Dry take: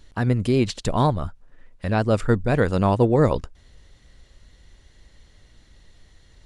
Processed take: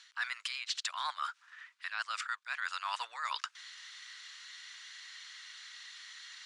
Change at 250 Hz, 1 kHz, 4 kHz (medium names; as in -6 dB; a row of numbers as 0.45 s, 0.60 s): under -40 dB, -11.5 dB, -0.5 dB